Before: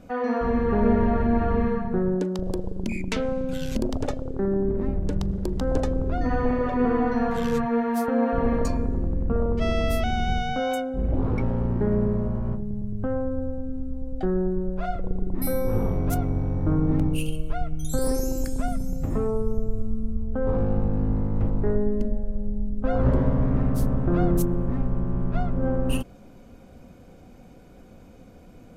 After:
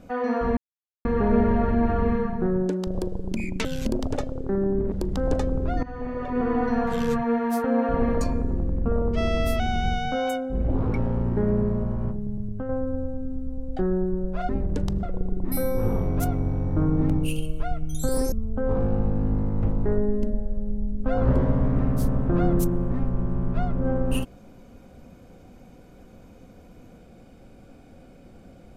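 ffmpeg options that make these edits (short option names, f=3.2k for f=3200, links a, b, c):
-filter_complex "[0:a]asplit=9[a][b][c][d][e][f][g][h][i];[a]atrim=end=0.57,asetpts=PTS-STARTPTS,afade=t=out:st=0.566:d=0.004:c=hsin,apad=pad_dur=0.48[j];[b]atrim=start=0.57:end=3.172,asetpts=PTS-STARTPTS,afade=t=in:d=0.004:c=hsin[k];[c]atrim=start=3.548:end=4.822[l];[d]atrim=start=5.358:end=6.27,asetpts=PTS-STARTPTS,afade=t=out:st=0.908:d=0.004:c=hsin:silence=0.158489[m];[e]atrim=start=6.27:end=13.13,asetpts=PTS-STARTPTS,afade=t=in:d=0.85:silence=0.158489,afade=t=out:st=6.6:d=0.26:silence=0.473151[n];[f]atrim=start=13.13:end=14.932,asetpts=PTS-STARTPTS,afade=t=in:d=0.004:c=hsin:silence=0.473151[o];[g]atrim=start=4.818:end=5.362[p];[h]atrim=start=14.928:end=18.222[q];[i]atrim=start=20.098[r];[j][k]concat=n=2:v=0:a=1[s];[s][l]acrossfade=d=0.004:c1=hsin:c2=hsin[t];[m][n][o]concat=n=3:v=0:a=1[u];[t][u]acrossfade=d=0.004:c1=hsin:c2=hsin[v];[v][p]acrossfade=d=0.004:c1=hsin:c2=hsin[w];[w][q]acrossfade=d=0.004:c1=hsin:c2=hsin[x];[x][r]acrossfade=d=0.004:c1=hsin:c2=hsin"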